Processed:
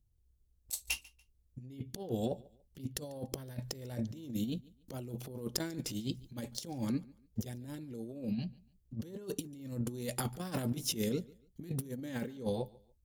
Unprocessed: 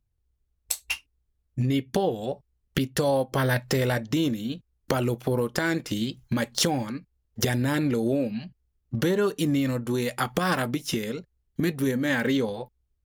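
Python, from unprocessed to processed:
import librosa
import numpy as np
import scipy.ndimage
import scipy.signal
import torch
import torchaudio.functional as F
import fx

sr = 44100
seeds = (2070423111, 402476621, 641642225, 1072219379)

p1 = fx.peak_eq(x, sr, hz=1500.0, db=-13.5, octaves=2.2)
p2 = fx.over_compress(p1, sr, threshold_db=-33.0, ratio=-0.5)
p3 = p2 + fx.echo_feedback(p2, sr, ms=144, feedback_pct=30, wet_db=-23.0, dry=0)
y = F.gain(torch.from_numpy(p3), -4.0).numpy()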